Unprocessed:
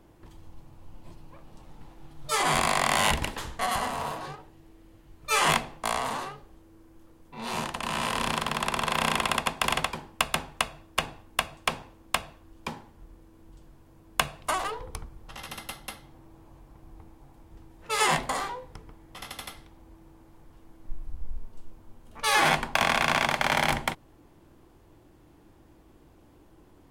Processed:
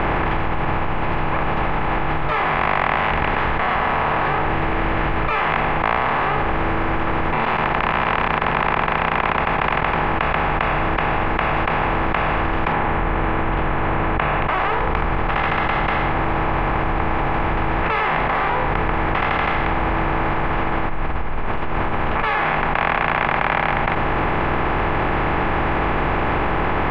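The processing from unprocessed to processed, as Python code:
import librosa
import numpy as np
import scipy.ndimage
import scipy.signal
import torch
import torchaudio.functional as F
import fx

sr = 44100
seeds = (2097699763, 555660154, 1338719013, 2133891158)

y = fx.tremolo_abs(x, sr, hz=8.5, at=(7.4, 9.92))
y = fx.moving_average(y, sr, points=8, at=(12.72, 14.49))
y = fx.bin_compress(y, sr, power=0.4)
y = scipy.signal.sosfilt(scipy.signal.butter(4, 2400.0, 'lowpass', fs=sr, output='sos'), y)
y = fx.env_flatten(y, sr, amount_pct=100)
y = F.gain(torch.from_numpy(y), -2.0).numpy()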